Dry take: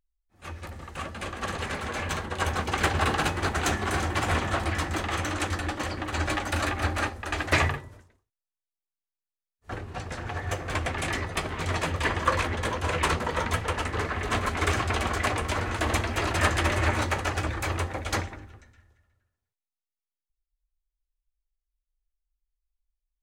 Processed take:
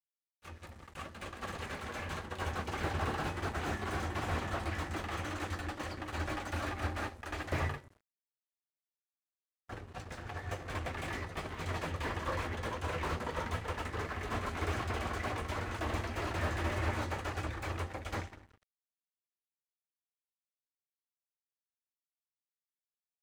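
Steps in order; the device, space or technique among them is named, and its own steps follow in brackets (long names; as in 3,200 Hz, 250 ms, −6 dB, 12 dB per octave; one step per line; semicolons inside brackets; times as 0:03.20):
early transistor amplifier (dead-zone distortion −46.5 dBFS; slew-rate limiting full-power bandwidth 61 Hz)
level −7.5 dB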